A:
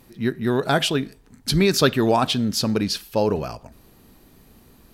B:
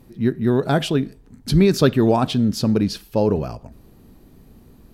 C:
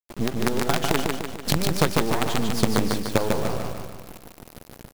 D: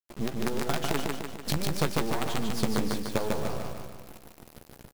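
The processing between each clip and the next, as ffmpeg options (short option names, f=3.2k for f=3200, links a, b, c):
-af "tiltshelf=f=660:g=5.5"
-af "acompressor=threshold=-23dB:ratio=12,acrusher=bits=4:dc=4:mix=0:aa=0.000001,aecho=1:1:148|296|444|592|740|888|1036:0.668|0.341|0.174|0.0887|0.0452|0.0231|0.0118,volume=5dB"
-filter_complex "[0:a]asoftclip=type=tanh:threshold=-6dB,asplit=2[a][b];[b]adelay=14,volume=-11dB[c];[a][c]amix=inputs=2:normalize=0,volume=-6dB"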